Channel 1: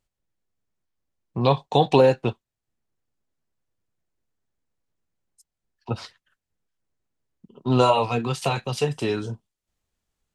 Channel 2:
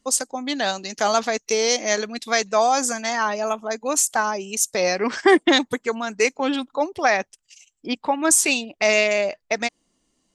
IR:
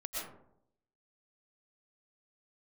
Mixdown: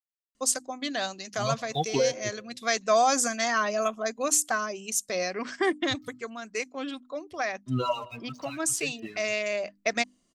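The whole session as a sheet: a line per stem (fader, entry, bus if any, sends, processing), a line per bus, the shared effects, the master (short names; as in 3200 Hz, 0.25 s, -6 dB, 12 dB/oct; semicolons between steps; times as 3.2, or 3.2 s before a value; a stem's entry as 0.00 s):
-4.0 dB, 0.00 s, send -19.5 dB, per-bin expansion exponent 3; elliptic low-pass 6300 Hz; crossover distortion -51.5 dBFS
-2.0 dB, 0.35 s, no send, notches 50/100/150/200/250/300 Hz; auto duck -9 dB, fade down 1.95 s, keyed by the first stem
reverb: on, RT60 0.75 s, pre-delay 80 ms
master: Butterworth band-stop 870 Hz, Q 5.7; bell 440 Hz -3 dB 0.39 oct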